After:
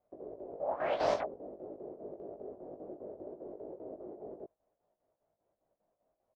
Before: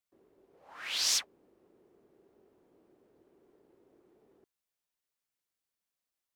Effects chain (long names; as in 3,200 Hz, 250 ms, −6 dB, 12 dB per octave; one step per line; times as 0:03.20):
low-pass with resonance 630 Hz, resonance Q 4.9
square-wave tremolo 5 Hz, depth 65%, duty 70%
double-tracking delay 19 ms −4 dB
level +15 dB